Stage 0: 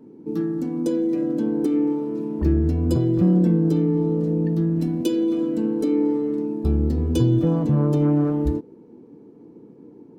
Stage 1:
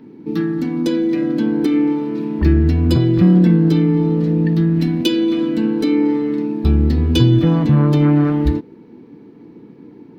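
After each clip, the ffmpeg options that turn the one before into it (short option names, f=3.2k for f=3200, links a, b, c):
-af "equalizer=f=500:t=o:w=1:g=-6,equalizer=f=2k:t=o:w=1:g=9,equalizer=f=4k:t=o:w=1:g=9,equalizer=f=8k:t=o:w=1:g=-8,volume=7dB"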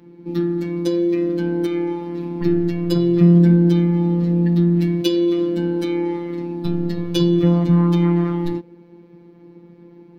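-af "afftfilt=real='hypot(re,im)*cos(PI*b)':imag='0':win_size=1024:overlap=0.75"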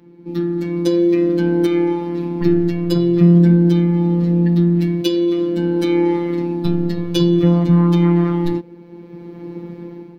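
-af "dynaudnorm=f=260:g=5:m=15dB,volume=-1dB"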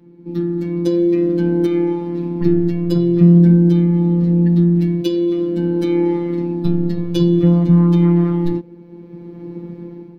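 -af "lowshelf=f=470:g=8.5,volume=-6dB"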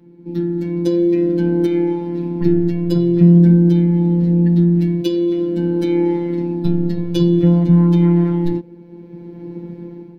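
-af "bandreject=f=1.2k:w=18"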